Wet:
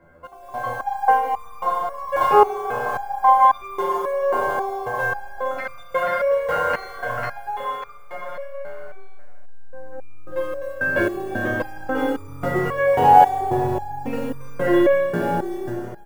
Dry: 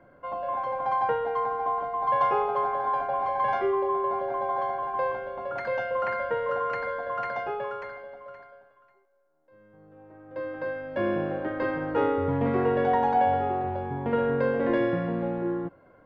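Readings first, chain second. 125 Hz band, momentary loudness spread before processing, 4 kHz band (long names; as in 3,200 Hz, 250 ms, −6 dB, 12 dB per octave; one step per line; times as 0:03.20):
+3.0 dB, 10 LU, +8.5 dB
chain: automatic gain control gain up to 12 dB
low-shelf EQ 68 Hz +8 dB
in parallel at −1 dB: downward compressor 6 to 1, threshold −28 dBFS, peak gain reduction 17.5 dB
on the sum: floating-point word with a short mantissa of 4 bits
on a send: echo with shifted repeats 154 ms, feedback 63%, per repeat +32 Hz, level −15 dB
on the sum: four-comb reverb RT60 2.4 s, combs from 29 ms, DRR 4 dB
step-sequenced resonator 3.7 Hz 83–1,200 Hz
level +5.5 dB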